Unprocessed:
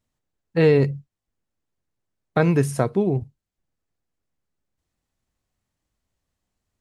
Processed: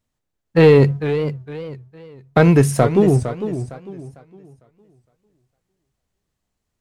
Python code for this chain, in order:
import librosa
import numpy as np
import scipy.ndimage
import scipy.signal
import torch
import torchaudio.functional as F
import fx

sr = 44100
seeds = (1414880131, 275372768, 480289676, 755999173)

y = fx.leveller(x, sr, passes=1)
y = fx.echo_warbled(y, sr, ms=455, feedback_pct=31, rate_hz=2.8, cents=163, wet_db=-10.5)
y = y * librosa.db_to_amplitude(3.5)